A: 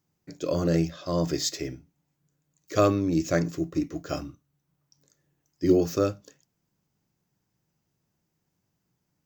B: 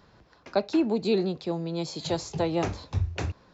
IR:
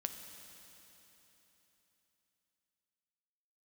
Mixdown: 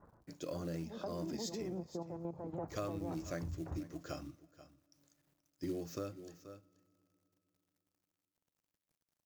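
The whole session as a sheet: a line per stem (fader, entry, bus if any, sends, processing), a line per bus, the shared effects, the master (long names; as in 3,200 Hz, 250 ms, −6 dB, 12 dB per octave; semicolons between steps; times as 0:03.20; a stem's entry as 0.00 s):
−8.5 dB, 0.00 s, send −23.5 dB, echo send −19.5 dB, log-companded quantiser 6 bits
+1.0 dB, 0.00 s, no send, echo send −4 dB, low-pass filter 1,300 Hz 24 dB per octave; mains-hum notches 50/100/150/200/250 Hz; output level in coarse steps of 10 dB; automatic ducking −12 dB, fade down 0.25 s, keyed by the first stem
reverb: on, RT60 3.6 s, pre-delay 5 ms
echo: single-tap delay 480 ms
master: parametric band 410 Hz −4.5 dB 0.23 octaves; downward compressor 3 to 1, threshold −40 dBFS, peak gain reduction 12 dB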